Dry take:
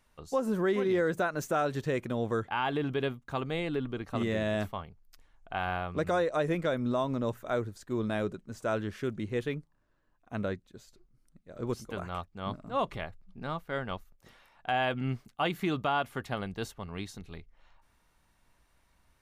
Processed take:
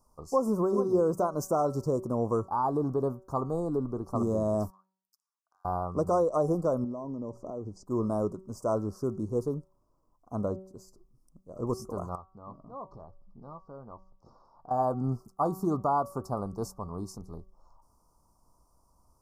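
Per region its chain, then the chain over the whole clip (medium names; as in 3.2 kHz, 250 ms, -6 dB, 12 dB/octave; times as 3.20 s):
4.70–5.65 s: ladder high-pass 1.8 kHz, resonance 70% + compression 2.5:1, threshold -59 dBFS
6.84–7.86 s: compression 10:1, threshold -37 dBFS + FFT filter 120 Hz 0 dB, 260 Hz +5 dB, 790 Hz -1 dB, 1.5 kHz -11 dB, 5.9 kHz -2 dB, 8.6 kHz -11 dB, 13 kHz -28 dB
12.15–14.71 s: low-pass 4.6 kHz 24 dB/octave + compression 2:1, threshold -54 dBFS + doubling 14 ms -13 dB
whole clip: Chebyshev band-stop 1.2–5 kHz, order 4; peaking EQ 1 kHz +4.5 dB 0.27 oct; de-hum 189.4 Hz, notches 19; trim +3 dB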